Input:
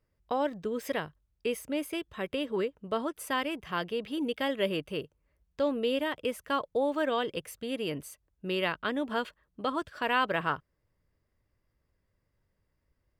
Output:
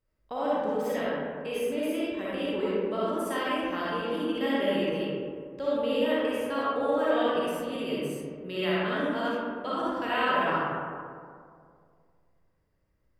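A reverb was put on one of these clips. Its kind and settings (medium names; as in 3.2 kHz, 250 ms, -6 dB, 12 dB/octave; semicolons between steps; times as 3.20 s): algorithmic reverb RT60 2.2 s, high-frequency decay 0.35×, pre-delay 15 ms, DRR -8.5 dB; trim -6.5 dB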